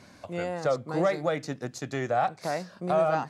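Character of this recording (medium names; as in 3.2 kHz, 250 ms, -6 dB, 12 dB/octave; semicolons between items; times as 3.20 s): noise floor -53 dBFS; spectral tilt -5.0 dB/octave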